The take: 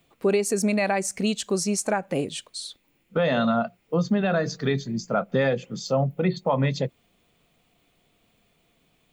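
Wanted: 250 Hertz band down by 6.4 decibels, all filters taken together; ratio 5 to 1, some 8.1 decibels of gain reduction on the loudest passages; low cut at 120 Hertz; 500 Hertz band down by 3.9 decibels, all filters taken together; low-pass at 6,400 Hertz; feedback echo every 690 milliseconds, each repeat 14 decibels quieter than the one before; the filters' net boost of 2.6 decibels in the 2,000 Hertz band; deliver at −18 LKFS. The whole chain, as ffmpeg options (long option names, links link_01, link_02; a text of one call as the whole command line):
ffmpeg -i in.wav -af "highpass=120,lowpass=6400,equalizer=frequency=250:width_type=o:gain=-7.5,equalizer=frequency=500:width_type=o:gain=-3,equalizer=frequency=2000:width_type=o:gain=3.5,acompressor=threshold=-30dB:ratio=5,aecho=1:1:690|1380:0.2|0.0399,volume=16.5dB" out.wav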